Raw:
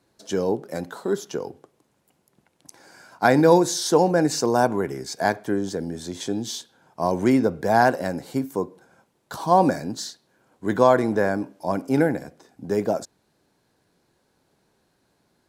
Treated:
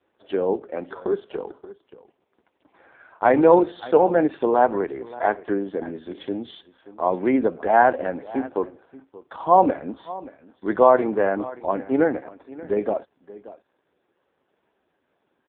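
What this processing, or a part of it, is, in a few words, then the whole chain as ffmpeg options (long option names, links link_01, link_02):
satellite phone: -filter_complex "[0:a]asettb=1/sr,asplit=3[link_01][link_02][link_03];[link_01]atrim=end=6.044[link_04];[link_02]atrim=start=6.04:end=7.34,asetpts=PTS-STARTPTS,afade=type=in:duration=0.004:curve=qsin,afade=type=out:start_time=1.296:duration=0.004:curve=qsin,adynamicequalizer=threshold=0.0251:dfrequency=350:dqfactor=0.96:tfrequency=350:tqfactor=0.96:attack=5:release=100:ratio=0.375:range=2:mode=cutabove:tftype=bell[link_05];[link_03]atrim=start=7.336[link_06];[link_04][link_05]acrossfade=duration=0.004:curve1=hsin:curve2=qsin[link_07];[link_07][link_06]acrossfade=duration=0.004:curve1=qsin:curve2=hsin,highpass=300,lowpass=3200,aecho=1:1:579:0.119,volume=3dB" -ar 8000 -c:a libopencore_amrnb -b:a 4750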